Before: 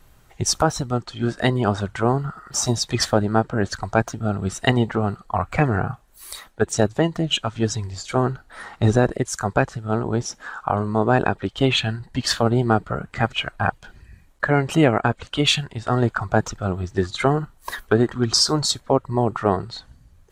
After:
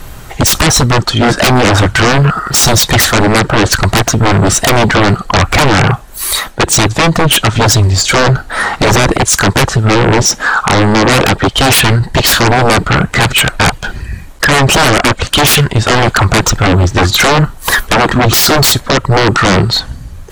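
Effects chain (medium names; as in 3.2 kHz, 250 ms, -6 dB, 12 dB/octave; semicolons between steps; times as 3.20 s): in parallel at +2.5 dB: peak limiter -13 dBFS, peak gain reduction 8.5 dB; on the sum: sine folder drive 17 dB, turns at -0.5 dBFS; trim -4 dB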